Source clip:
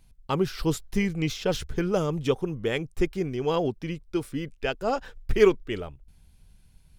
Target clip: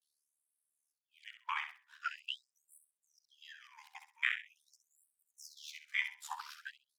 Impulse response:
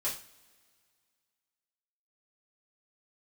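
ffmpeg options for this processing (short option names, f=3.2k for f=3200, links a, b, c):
-af "areverse,afwtdn=0.0178,acompressor=threshold=-25dB:ratio=6,bandreject=f=195.8:t=h:w=4,bandreject=f=391.6:t=h:w=4,bandreject=f=587.4:t=h:w=4,bandreject=f=783.2:t=h:w=4,bandreject=f=979:t=h:w=4,bandreject=f=1.1748k:t=h:w=4,bandreject=f=1.3706k:t=h:w=4,bandreject=f=1.5664k:t=h:w=4,bandreject=f=1.7622k:t=h:w=4,bandreject=f=1.958k:t=h:w=4,bandreject=f=2.1538k:t=h:w=4,aeval=exprs='val(0)*sin(2*PI*37*n/s)':c=same,aecho=1:1:65|130|195:0.355|0.0887|0.0222,afftfilt=real='re*gte(b*sr/1024,730*pow(7800/730,0.5+0.5*sin(2*PI*0.44*pts/sr)))':imag='im*gte(b*sr/1024,730*pow(7800/730,0.5+0.5*sin(2*PI*0.44*pts/sr)))':win_size=1024:overlap=0.75,volume=7dB"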